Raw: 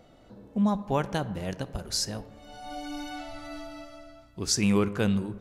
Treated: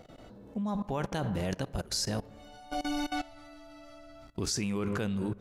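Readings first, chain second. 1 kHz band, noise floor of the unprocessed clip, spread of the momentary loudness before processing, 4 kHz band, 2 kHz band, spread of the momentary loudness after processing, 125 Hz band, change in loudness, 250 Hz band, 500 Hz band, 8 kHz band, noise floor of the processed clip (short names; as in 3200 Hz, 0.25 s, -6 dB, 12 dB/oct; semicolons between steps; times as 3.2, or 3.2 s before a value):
-3.0 dB, -56 dBFS, 19 LU, -3.5 dB, -3.0 dB, 20 LU, -3.5 dB, -4.5 dB, -5.0 dB, -4.5 dB, -5.0 dB, -52 dBFS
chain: level quantiser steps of 19 dB; gain +6.5 dB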